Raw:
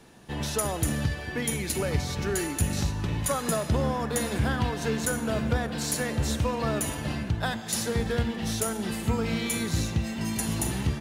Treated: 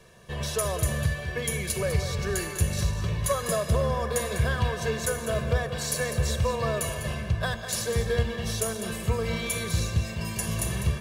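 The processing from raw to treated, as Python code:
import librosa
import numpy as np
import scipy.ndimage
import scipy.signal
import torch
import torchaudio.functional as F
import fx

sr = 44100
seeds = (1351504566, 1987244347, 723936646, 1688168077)

p1 = x + 0.92 * np.pad(x, (int(1.8 * sr / 1000.0), 0))[:len(x)]
p2 = p1 + fx.echo_single(p1, sr, ms=200, db=-10.5, dry=0)
y = p2 * librosa.db_to_amplitude(-2.5)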